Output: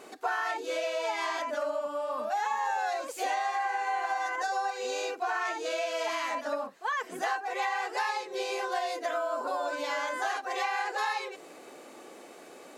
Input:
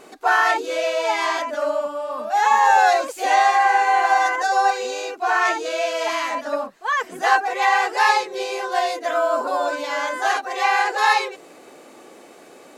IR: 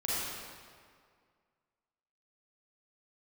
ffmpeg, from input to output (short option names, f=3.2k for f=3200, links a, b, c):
-filter_complex "[0:a]highpass=f=160:p=1,acompressor=threshold=-25dB:ratio=6,asplit=2[a][b];[1:a]atrim=start_sample=2205,atrim=end_sample=3087[c];[b][c]afir=irnorm=-1:irlink=0,volume=-22dB[d];[a][d]amix=inputs=2:normalize=0,volume=-4dB"